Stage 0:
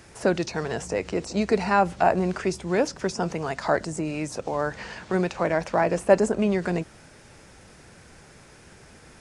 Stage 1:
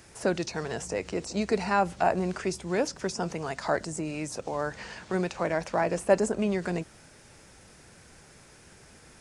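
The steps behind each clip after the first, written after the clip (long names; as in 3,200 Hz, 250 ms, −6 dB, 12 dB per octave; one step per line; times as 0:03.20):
high-shelf EQ 5,000 Hz +6 dB
level −4.5 dB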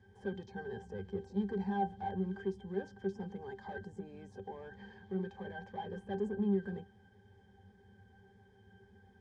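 hard clipping −26 dBFS, distortion −7 dB
resonances in every octave G, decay 0.13 s
level +2.5 dB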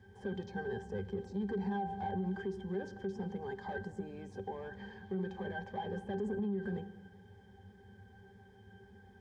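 on a send at −15 dB: convolution reverb RT60 1.5 s, pre-delay 44 ms
on the sum: brickwall limiter −33 dBFS, peak gain reduction 10.5 dB
level +4 dB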